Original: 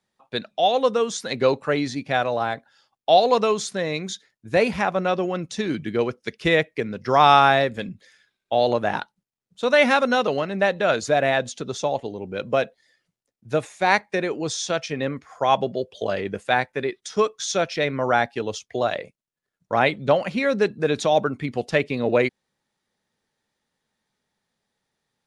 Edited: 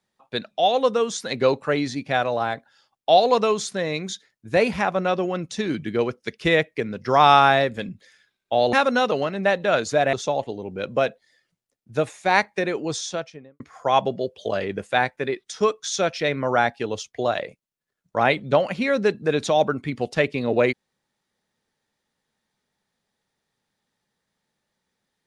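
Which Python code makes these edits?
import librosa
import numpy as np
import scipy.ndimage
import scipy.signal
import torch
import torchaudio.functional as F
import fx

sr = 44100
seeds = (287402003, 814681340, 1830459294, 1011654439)

y = fx.studio_fade_out(x, sr, start_s=14.47, length_s=0.69)
y = fx.edit(y, sr, fx.cut(start_s=8.73, length_s=1.16),
    fx.cut(start_s=11.29, length_s=0.4), tone=tone)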